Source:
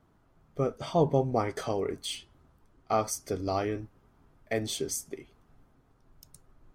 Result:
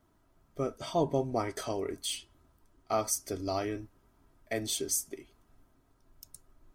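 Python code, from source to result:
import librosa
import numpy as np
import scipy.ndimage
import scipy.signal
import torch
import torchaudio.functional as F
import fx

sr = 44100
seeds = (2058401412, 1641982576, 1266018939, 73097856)

y = fx.high_shelf(x, sr, hz=4900.0, db=9.5)
y = y + 0.35 * np.pad(y, (int(3.1 * sr / 1000.0), 0))[:len(y)]
y = y * librosa.db_to_amplitude(-4.0)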